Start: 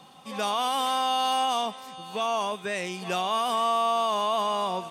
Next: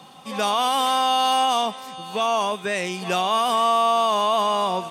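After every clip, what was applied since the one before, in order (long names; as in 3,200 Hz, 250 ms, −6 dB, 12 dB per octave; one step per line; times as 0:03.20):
high-pass filter 62 Hz
level +5.5 dB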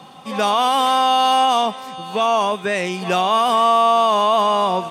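high-shelf EQ 3,700 Hz −6.5 dB
level +5 dB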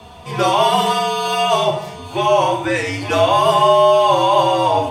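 feedback delay network reverb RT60 0.68 s, low-frequency decay 1.55×, high-frequency decay 0.75×, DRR 0.5 dB
frequency shifter −78 Hz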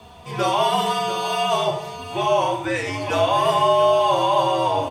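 single-tap delay 692 ms −12.5 dB
surface crackle 330 per second −46 dBFS
level −5 dB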